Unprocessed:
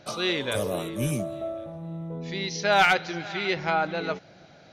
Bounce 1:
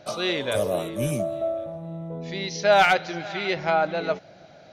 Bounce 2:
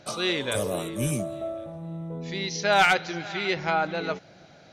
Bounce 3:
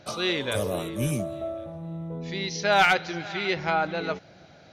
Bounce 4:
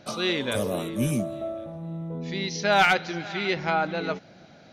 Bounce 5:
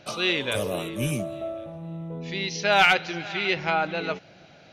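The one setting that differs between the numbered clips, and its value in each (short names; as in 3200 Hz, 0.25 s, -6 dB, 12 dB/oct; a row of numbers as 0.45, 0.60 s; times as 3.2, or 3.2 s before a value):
bell, frequency: 630, 8200, 80, 230, 2700 Hz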